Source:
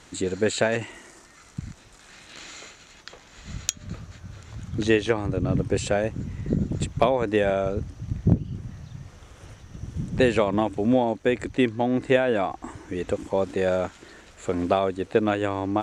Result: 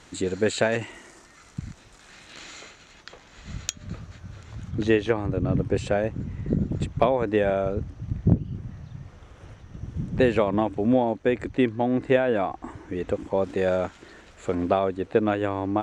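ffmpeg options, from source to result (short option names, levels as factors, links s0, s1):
-af "asetnsamples=n=441:p=0,asendcmd='2.62 lowpass f 4900;4.71 lowpass f 2400;13.44 lowpass f 4600;14.55 lowpass f 2400',lowpass=f=7900:p=1"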